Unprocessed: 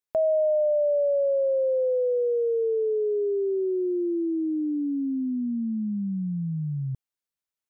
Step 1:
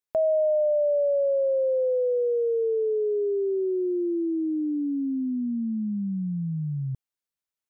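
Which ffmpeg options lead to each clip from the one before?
ffmpeg -i in.wav -af anull out.wav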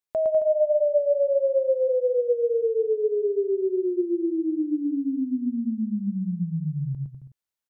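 ffmpeg -i in.wav -af "aecho=1:1:110|198|268.4|324.7|369.8:0.631|0.398|0.251|0.158|0.1,volume=-1dB" out.wav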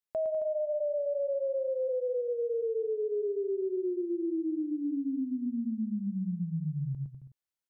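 ffmpeg -i in.wav -af "alimiter=limit=-21.5dB:level=0:latency=1:release=41,volume=-5dB" out.wav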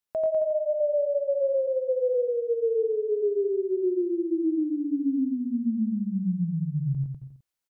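ffmpeg -i in.wav -af "aecho=1:1:88:0.668,volume=3.5dB" out.wav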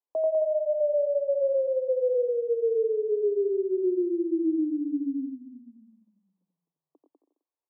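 ffmpeg -i in.wav -af "asuperpass=centerf=570:order=20:qfactor=0.65" out.wav

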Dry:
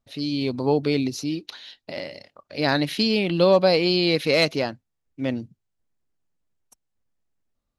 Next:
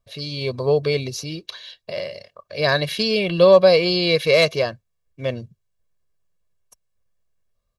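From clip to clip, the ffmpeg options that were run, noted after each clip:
ffmpeg -i in.wav -af "aecho=1:1:1.8:0.8,volume=1dB" out.wav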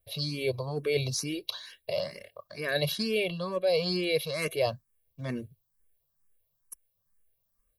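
ffmpeg -i in.wav -filter_complex "[0:a]areverse,acompressor=threshold=-23dB:ratio=6,areverse,aexciter=amount=2.8:drive=9.3:freq=9200,asplit=2[link_01][link_02];[link_02]afreqshift=2.2[link_03];[link_01][link_03]amix=inputs=2:normalize=1" out.wav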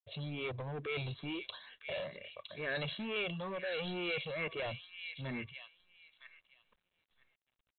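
ffmpeg -i in.wav -filter_complex "[0:a]acrossover=split=1400[link_01][link_02];[link_01]asoftclip=type=hard:threshold=-34dB[link_03];[link_02]aecho=1:1:963|1926|2889:0.562|0.09|0.0144[link_04];[link_03][link_04]amix=inputs=2:normalize=0,volume=-4dB" -ar 8000 -c:a adpcm_g726 -b:a 40k out.wav

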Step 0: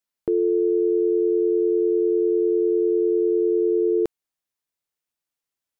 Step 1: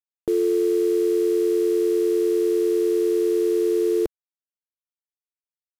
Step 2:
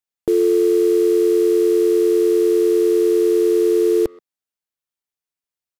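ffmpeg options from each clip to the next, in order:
ffmpeg -i in.wav -af "asubboost=boost=3:cutoff=66,acrusher=bits=5:mix=0:aa=0.5" out.wav
ffmpeg -i in.wav -filter_complex "[0:a]asplit=2[link_01][link_02];[link_02]adelay=130,highpass=300,lowpass=3400,asoftclip=type=hard:threshold=-23.5dB,volume=-22dB[link_03];[link_01][link_03]amix=inputs=2:normalize=0,volume=5dB" out.wav

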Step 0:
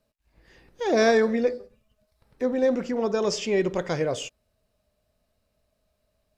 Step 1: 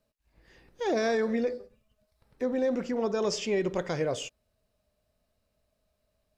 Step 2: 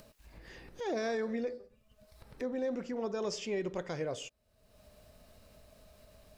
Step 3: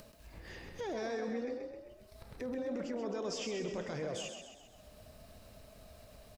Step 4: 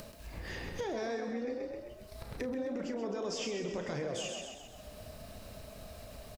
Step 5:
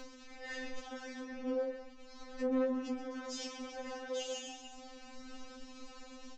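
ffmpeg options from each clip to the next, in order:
ffmpeg -i in.wav -af "alimiter=limit=-16.5dB:level=0:latency=1:release=64,volume=-3dB" out.wav
ffmpeg -i in.wav -af "acompressor=mode=upward:threshold=-31dB:ratio=2.5,volume=-7dB" out.wav
ffmpeg -i in.wav -filter_complex "[0:a]alimiter=level_in=10dB:limit=-24dB:level=0:latency=1:release=27,volume=-10dB,asplit=2[link_01][link_02];[link_02]asplit=6[link_03][link_04][link_05][link_06][link_07][link_08];[link_03]adelay=131,afreqshift=31,volume=-6.5dB[link_09];[link_04]adelay=262,afreqshift=62,volume=-12.3dB[link_10];[link_05]adelay=393,afreqshift=93,volume=-18.2dB[link_11];[link_06]adelay=524,afreqshift=124,volume=-24dB[link_12];[link_07]adelay=655,afreqshift=155,volume=-29.9dB[link_13];[link_08]adelay=786,afreqshift=186,volume=-35.7dB[link_14];[link_09][link_10][link_11][link_12][link_13][link_14]amix=inputs=6:normalize=0[link_15];[link_01][link_15]amix=inputs=2:normalize=0,volume=2dB" out.wav
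ffmpeg -i in.wav -filter_complex "[0:a]acompressor=threshold=-41dB:ratio=6,asplit=2[link_01][link_02];[link_02]adelay=35,volume=-11dB[link_03];[link_01][link_03]amix=inputs=2:normalize=0,volume=7dB" out.wav
ffmpeg -i in.wav -af "aresample=16000,asoftclip=type=tanh:threshold=-39.5dB,aresample=44100,afftfilt=real='re*3.46*eq(mod(b,12),0)':imag='im*3.46*eq(mod(b,12),0)':win_size=2048:overlap=0.75,volume=4dB" out.wav

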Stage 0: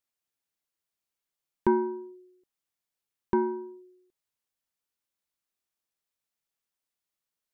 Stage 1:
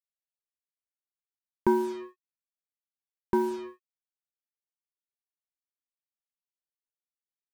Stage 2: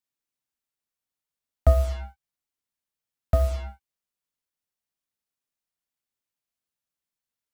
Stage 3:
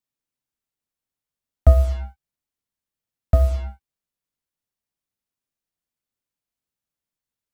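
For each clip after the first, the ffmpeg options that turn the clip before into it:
ffmpeg -i in.wav -af "acrusher=bits=6:mix=0:aa=0.5" out.wav
ffmpeg -i in.wav -af "afreqshift=-300,volume=5.5dB" out.wav
ffmpeg -i in.wav -af "lowshelf=frequency=410:gain=7,volume=-1dB" out.wav

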